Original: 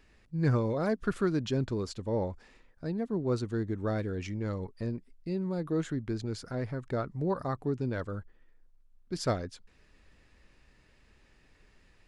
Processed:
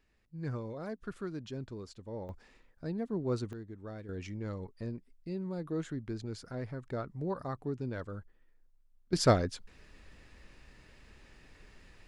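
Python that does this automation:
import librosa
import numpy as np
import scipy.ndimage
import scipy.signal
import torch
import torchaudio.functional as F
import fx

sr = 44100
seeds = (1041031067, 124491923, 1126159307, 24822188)

y = fx.gain(x, sr, db=fx.steps((0.0, -11.0), (2.29, -3.0), (3.53, -13.0), (4.09, -5.0), (9.13, 5.5)))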